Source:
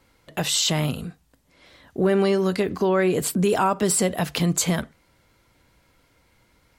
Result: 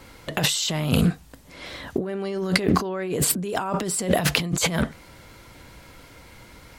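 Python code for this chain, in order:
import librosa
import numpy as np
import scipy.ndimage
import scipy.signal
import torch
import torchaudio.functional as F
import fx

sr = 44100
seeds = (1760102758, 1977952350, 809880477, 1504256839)

y = fx.over_compress(x, sr, threshold_db=-31.0, ratio=-1.0)
y = fx.doppler_dist(y, sr, depth_ms=0.18)
y = F.gain(torch.from_numpy(y), 6.5).numpy()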